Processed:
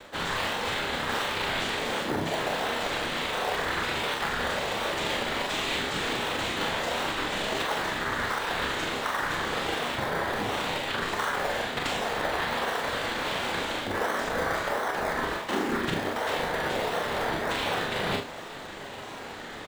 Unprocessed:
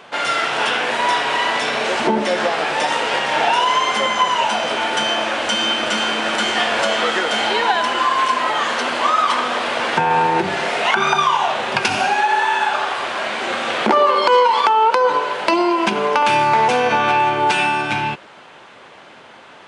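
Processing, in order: dynamic EQ 1900 Hz, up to +7 dB, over -37 dBFS, Q 3.4; reverse; compressor 12:1, threshold -29 dBFS, peak gain reduction 20.5 dB; reverse; noise vocoder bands 6; in parallel at -6 dB: decimation with a swept rate 26×, swing 60% 1.4 Hz; on the sum: doubler 42 ms -5 dB; flutter echo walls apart 5.1 m, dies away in 0.23 s

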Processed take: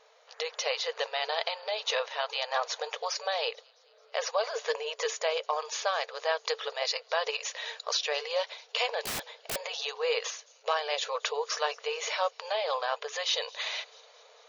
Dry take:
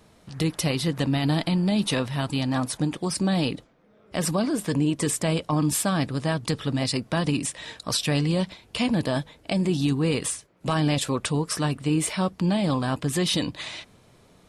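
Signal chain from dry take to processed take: notch 5200 Hz, Q 20; on a send: thin delay 0.219 s, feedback 61%, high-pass 4800 Hz, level -20.5 dB; on the sum: FFT band-pass 430–7000 Hz; 9.05–9.56 wrapped overs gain 30.5 dB; vocal rider within 3 dB 0.5 s

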